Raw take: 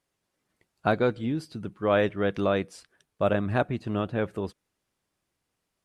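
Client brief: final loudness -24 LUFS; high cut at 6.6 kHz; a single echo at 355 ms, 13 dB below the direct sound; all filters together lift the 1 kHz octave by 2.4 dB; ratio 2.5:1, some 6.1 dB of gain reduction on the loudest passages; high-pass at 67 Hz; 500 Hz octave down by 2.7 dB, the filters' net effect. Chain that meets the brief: high-pass 67 Hz; low-pass 6.6 kHz; peaking EQ 500 Hz -5 dB; peaking EQ 1 kHz +5.5 dB; compression 2.5:1, threshold -27 dBFS; delay 355 ms -13 dB; trim +8.5 dB

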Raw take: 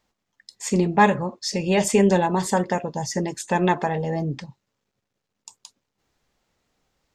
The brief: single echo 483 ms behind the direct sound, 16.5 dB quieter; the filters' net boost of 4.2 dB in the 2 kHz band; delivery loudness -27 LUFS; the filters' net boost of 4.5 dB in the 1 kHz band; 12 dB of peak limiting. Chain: peaking EQ 1 kHz +5 dB; peaking EQ 2 kHz +3.5 dB; peak limiter -11.5 dBFS; delay 483 ms -16.5 dB; trim -3.5 dB

